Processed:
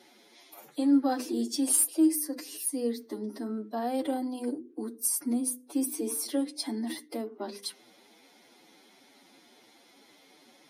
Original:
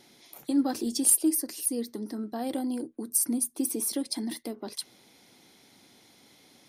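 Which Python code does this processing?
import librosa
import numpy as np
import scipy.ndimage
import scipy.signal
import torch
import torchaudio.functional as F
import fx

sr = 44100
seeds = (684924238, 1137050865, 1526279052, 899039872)

y = scipy.signal.sosfilt(scipy.signal.butter(2, 250.0, 'highpass', fs=sr, output='sos'), x)
y = fx.high_shelf(y, sr, hz=3400.0, db=-7.5)
y = fx.hum_notches(y, sr, base_hz=50, count=10)
y = fx.stretch_vocoder(y, sr, factor=1.6)
y = y * librosa.db_to_amplitude(3.5)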